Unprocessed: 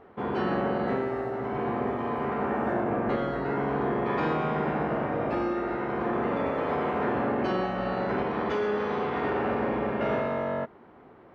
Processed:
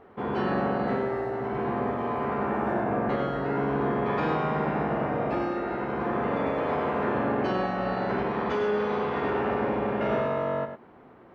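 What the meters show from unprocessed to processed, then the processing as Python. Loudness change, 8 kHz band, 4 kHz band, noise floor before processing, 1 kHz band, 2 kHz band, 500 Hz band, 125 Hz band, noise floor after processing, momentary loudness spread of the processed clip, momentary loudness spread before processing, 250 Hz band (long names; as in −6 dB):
+1.0 dB, can't be measured, +0.5 dB, −52 dBFS, +1.0 dB, +0.5 dB, +1.0 dB, +1.5 dB, −52 dBFS, 3 LU, 3 LU, +0.5 dB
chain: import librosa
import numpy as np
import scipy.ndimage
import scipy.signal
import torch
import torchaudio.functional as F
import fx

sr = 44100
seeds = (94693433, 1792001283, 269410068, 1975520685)

y = x + 10.0 ** (-8.0 / 20.0) * np.pad(x, (int(101 * sr / 1000.0), 0))[:len(x)]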